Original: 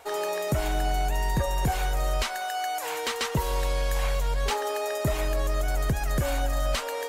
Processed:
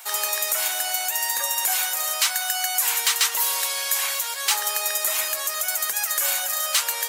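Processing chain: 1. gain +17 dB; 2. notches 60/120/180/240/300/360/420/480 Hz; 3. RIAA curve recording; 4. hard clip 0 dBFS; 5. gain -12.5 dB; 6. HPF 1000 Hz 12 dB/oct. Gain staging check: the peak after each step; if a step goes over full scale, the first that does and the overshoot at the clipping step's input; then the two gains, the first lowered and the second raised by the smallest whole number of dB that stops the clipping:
-0.5, +1.0, +8.0, 0.0, -12.5, -9.0 dBFS; step 2, 8.0 dB; step 1 +9 dB, step 5 -4.5 dB

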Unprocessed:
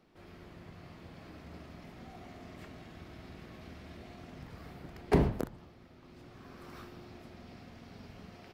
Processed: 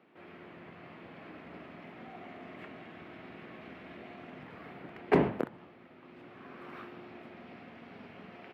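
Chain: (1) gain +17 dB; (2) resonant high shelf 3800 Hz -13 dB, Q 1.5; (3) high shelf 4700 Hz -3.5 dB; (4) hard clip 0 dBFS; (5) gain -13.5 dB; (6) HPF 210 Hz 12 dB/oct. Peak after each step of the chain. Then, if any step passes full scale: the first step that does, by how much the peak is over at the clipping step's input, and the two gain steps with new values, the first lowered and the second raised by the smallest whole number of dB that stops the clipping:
+3.5, +3.5, +3.5, 0.0, -13.5, -11.0 dBFS; step 1, 3.5 dB; step 1 +13 dB, step 5 -9.5 dB

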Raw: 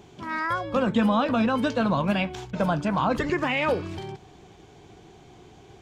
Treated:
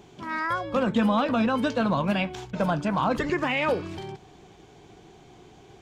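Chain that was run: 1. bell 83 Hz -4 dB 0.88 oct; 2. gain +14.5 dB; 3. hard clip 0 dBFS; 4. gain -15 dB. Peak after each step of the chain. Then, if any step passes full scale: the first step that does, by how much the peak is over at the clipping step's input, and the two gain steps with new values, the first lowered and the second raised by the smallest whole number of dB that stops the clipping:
-11.5, +3.0, 0.0, -15.0 dBFS; step 2, 3.0 dB; step 2 +11.5 dB, step 4 -12 dB

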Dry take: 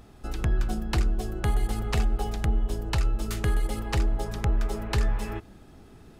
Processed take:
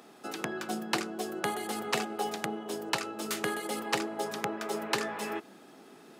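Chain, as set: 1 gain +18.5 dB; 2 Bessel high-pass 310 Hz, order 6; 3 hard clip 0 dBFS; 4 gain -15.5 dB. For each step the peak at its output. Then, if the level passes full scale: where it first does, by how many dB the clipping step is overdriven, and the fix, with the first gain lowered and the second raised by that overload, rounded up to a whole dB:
+3.0, +3.5, 0.0, -15.5 dBFS; step 1, 3.5 dB; step 1 +14.5 dB, step 4 -11.5 dB

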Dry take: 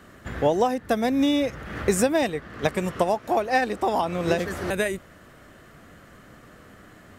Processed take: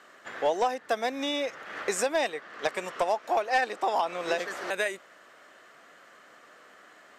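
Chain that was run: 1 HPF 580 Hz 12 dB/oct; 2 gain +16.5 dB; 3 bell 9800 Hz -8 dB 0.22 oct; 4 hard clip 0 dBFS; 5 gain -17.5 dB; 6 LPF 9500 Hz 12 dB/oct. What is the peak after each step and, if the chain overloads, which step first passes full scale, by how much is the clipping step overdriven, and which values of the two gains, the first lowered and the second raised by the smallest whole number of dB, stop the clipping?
-9.5, +7.0, +7.0, 0.0, -17.5, -17.0 dBFS; step 2, 7.0 dB; step 2 +9.5 dB, step 5 -10.5 dB

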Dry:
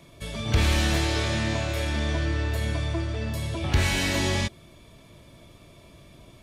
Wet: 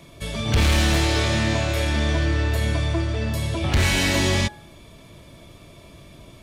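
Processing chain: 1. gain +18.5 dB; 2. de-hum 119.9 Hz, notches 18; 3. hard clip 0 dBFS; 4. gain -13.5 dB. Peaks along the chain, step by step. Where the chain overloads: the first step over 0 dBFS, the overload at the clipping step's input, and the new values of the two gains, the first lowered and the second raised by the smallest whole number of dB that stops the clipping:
+7.5, +7.5, 0.0, -13.5 dBFS; step 1, 7.5 dB; step 1 +10.5 dB, step 4 -5.5 dB

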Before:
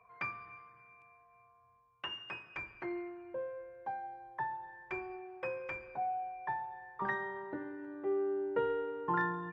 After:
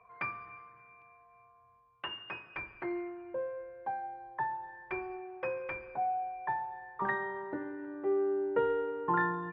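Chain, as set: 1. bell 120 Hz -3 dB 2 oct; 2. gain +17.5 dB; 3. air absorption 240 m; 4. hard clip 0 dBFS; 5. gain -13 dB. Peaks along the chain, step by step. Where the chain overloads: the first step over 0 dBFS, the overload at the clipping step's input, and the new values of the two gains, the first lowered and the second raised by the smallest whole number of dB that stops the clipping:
-22.5, -5.0, -6.0, -6.0, -19.0 dBFS; no overload

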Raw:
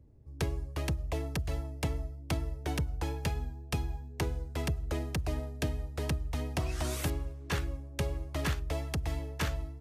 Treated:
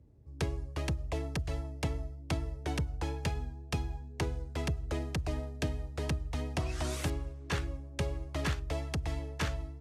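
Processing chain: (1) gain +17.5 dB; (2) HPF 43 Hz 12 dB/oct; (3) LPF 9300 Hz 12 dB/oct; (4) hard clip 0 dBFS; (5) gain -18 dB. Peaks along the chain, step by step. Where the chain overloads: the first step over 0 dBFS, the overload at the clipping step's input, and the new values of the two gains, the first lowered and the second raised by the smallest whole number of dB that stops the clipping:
-3.5, -2.5, -2.5, -2.5, -20.5 dBFS; no overload

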